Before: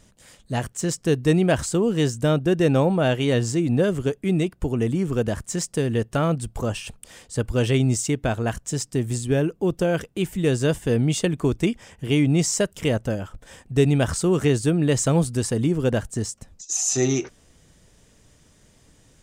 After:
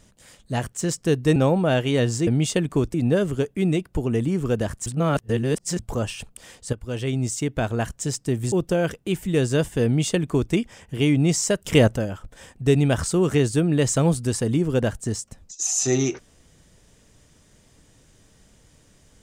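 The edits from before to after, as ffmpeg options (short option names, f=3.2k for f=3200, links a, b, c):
-filter_complex "[0:a]asplit=10[a][b][c][d][e][f][g][h][i][j];[a]atrim=end=1.362[k];[b]atrim=start=2.698:end=3.612[l];[c]atrim=start=10.948:end=11.622[m];[d]atrim=start=3.608:end=5.532[n];[e]atrim=start=5.528:end=6.462,asetpts=PTS-STARTPTS,areverse[o];[f]atrim=start=6.458:end=7.4,asetpts=PTS-STARTPTS,afade=t=out:st=0.938:d=0.004:c=hsin:silence=0.251189[p];[g]atrim=start=7.4:end=9.192,asetpts=PTS-STARTPTS,afade=t=in:d=0.98:silence=0.251189[q];[h]atrim=start=9.618:end=12.752[r];[i]atrim=start=12.748:end=13.062,asetpts=PTS-STARTPTS,volume=6.5dB[s];[j]atrim=start=13.058[t];[k][l]acrossfade=d=0.004:c1=hsin:c2=hsin[u];[u][m]acrossfade=d=0.004:c1=hsin:c2=hsin[v];[v][n]acrossfade=d=0.004:c1=hsin:c2=hsin[w];[w][o]acrossfade=d=0.004:c1=hsin:c2=hsin[x];[p][q]concat=n=2:v=0:a=1[y];[x][y]acrossfade=d=0.004:c1=hsin:c2=hsin[z];[z][r]acrossfade=d=0.004:c1=hsin:c2=hsin[aa];[aa][s]acrossfade=d=0.004:c1=hsin:c2=hsin[ab];[ab][t]acrossfade=d=0.004:c1=hsin:c2=hsin"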